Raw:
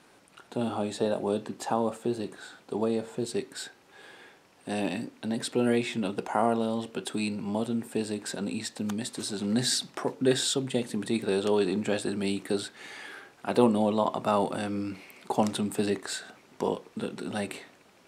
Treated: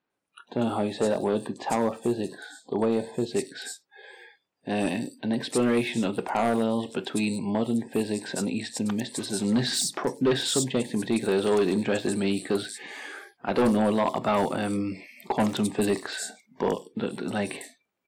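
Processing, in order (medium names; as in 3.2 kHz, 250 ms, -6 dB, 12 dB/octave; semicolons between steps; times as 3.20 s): spectral noise reduction 28 dB; hard clipper -21.5 dBFS, distortion -12 dB; bands offset in time lows, highs 100 ms, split 4.8 kHz; trim +4 dB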